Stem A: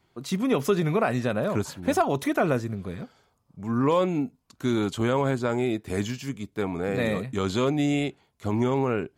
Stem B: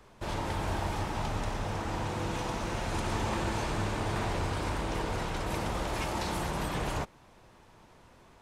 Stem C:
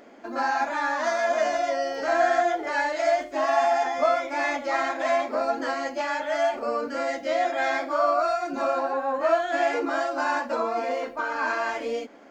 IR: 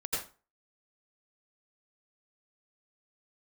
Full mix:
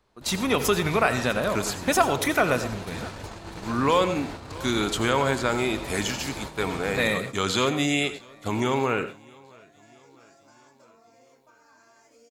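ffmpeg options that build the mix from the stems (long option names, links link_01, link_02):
-filter_complex "[0:a]agate=range=-33dB:threshold=-50dB:ratio=3:detection=peak,tiltshelf=frequency=890:gain=-6.5,volume=2dB,asplit=4[link_01][link_02][link_03][link_04];[link_02]volume=-14dB[link_05];[link_03]volume=-18.5dB[link_06];[1:a]equalizer=frequency=4200:width_type=o:width=0.42:gain=6.5,aeval=exprs='clip(val(0),-1,0.0266)':channel_layout=same,volume=-8.5dB,asplit=2[link_07][link_08];[link_08]volume=-4dB[link_09];[2:a]acrossover=split=260[link_10][link_11];[link_11]acompressor=threshold=-31dB:ratio=6[link_12];[link_10][link_12]amix=inputs=2:normalize=0,aexciter=amount=4.8:drive=8.9:freq=5000,adelay=300,volume=-17.5dB[link_13];[link_04]apad=whole_len=555685[link_14];[link_13][link_14]sidechaincompress=threshold=-36dB:ratio=8:attack=16:release=112[link_15];[3:a]atrim=start_sample=2205[link_16];[link_05][link_09]amix=inputs=2:normalize=0[link_17];[link_17][link_16]afir=irnorm=-1:irlink=0[link_18];[link_06]aecho=0:1:651|1302|1953|2604|3255|3906|4557|5208:1|0.54|0.292|0.157|0.085|0.0459|0.0248|0.0134[link_19];[link_01][link_07][link_15][link_18][link_19]amix=inputs=5:normalize=0,agate=range=-7dB:threshold=-34dB:ratio=16:detection=peak"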